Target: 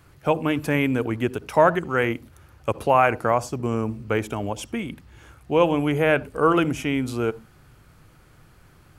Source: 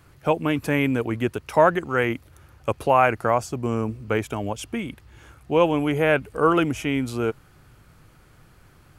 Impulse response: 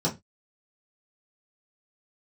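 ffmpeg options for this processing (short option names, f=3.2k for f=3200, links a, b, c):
-filter_complex "[0:a]asplit=2[a][b];[1:a]atrim=start_sample=2205,adelay=59[c];[b][c]afir=irnorm=-1:irlink=0,volume=-31dB[d];[a][d]amix=inputs=2:normalize=0"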